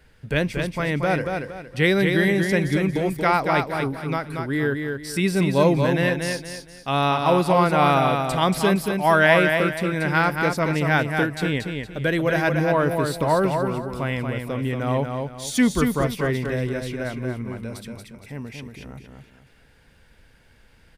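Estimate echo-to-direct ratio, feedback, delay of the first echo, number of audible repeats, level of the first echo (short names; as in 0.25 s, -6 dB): -4.5 dB, 32%, 0.232 s, 4, -5.0 dB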